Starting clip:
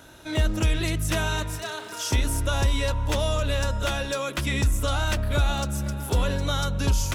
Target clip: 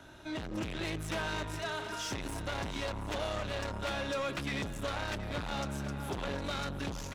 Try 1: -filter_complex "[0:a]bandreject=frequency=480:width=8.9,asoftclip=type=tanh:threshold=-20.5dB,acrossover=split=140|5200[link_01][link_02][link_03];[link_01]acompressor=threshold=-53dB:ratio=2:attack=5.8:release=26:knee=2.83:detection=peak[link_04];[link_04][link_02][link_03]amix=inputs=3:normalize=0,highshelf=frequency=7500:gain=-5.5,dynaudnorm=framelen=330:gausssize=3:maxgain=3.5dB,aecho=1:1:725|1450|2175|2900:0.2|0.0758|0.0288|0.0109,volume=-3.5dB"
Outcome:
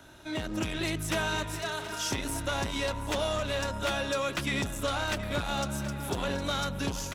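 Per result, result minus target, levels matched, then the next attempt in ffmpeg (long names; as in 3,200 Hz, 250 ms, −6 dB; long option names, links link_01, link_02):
soft clipping: distortion −8 dB; 8,000 Hz band +3.5 dB
-filter_complex "[0:a]bandreject=frequency=480:width=8.9,asoftclip=type=tanh:threshold=-30dB,acrossover=split=140|5200[link_01][link_02][link_03];[link_01]acompressor=threshold=-53dB:ratio=2:attack=5.8:release=26:knee=2.83:detection=peak[link_04];[link_04][link_02][link_03]amix=inputs=3:normalize=0,highshelf=frequency=7500:gain=-5.5,dynaudnorm=framelen=330:gausssize=3:maxgain=3.5dB,aecho=1:1:725|1450|2175|2900:0.2|0.0758|0.0288|0.0109,volume=-3.5dB"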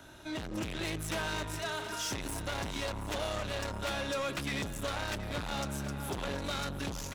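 8,000 Hz band +4.0 dB
-filter_complex "[0:a]bandreject=frequency=480:width=8.9,asoftclip=type=tanh:threshold=-30dB,acrossover=split=140|5200[link_01][link_02][link_03];[link_01]acompressor=threshold=-53dB:ratio=2:attack=5.8:release=26:knee=2.83:detection=peak[link_04];[link_04][link_02][link_03]amix=inputs=3:normalize=0,highshelf=frequency=7500:gain=-15.5,dynaudnorm=framelen=330:gausssize=3:maxgain=3.5dB,aecho=1:1:725|1450|2175|2900:0.2|0.0758|0.0288|0.0109,volume=-3.5dB"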